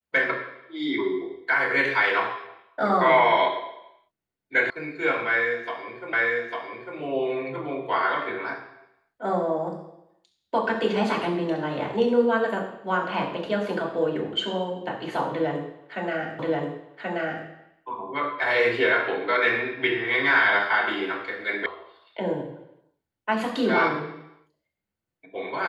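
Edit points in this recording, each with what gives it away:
4.70 s: sound stops dead
6.13 s: repeat of the last 0.85 s
16.39 s: repeat of the last 1.08 s
21.66 s: sound stops dead

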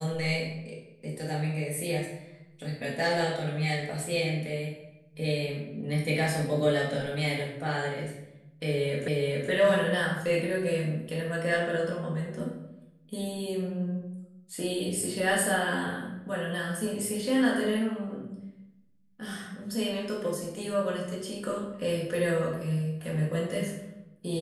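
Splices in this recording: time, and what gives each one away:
9.08 s: repeat of the last 0.42 s

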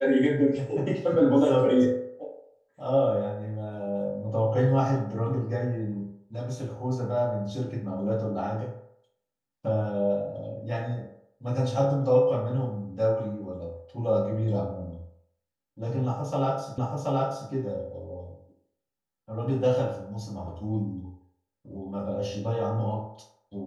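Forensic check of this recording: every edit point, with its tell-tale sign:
16.78 s: repeat of the last 0.73 s

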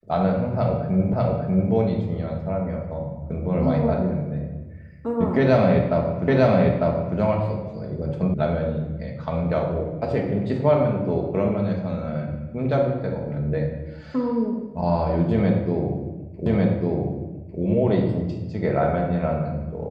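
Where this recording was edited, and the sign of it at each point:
1.13 s: repeat of the last 0.59 s
6.28 s: repeat of the last 0.9 s
8.34 s: sound stops dead
16.46 s: repeat of the last 1.15 s

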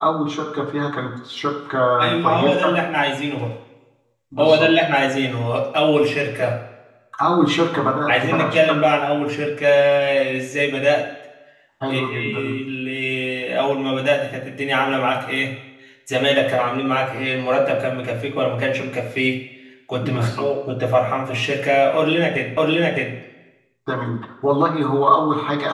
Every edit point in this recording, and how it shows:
22.57 s: repeat of the last 0.61 s

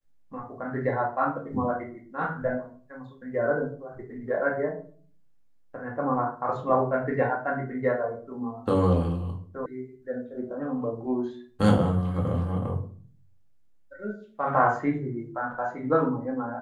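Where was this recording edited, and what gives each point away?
9.66 s: sound stops dead

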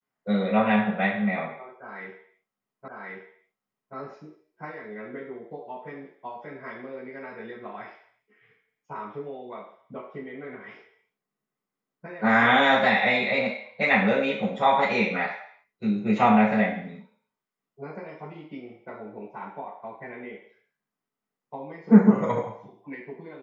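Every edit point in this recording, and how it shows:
2.88 s: repeat of the last 1.08 s

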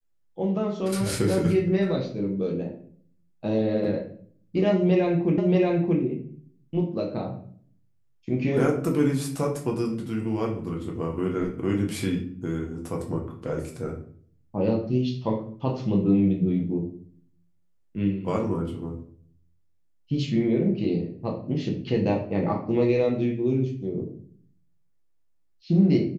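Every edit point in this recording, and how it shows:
5.38 s: repeat of the last 0.63 s

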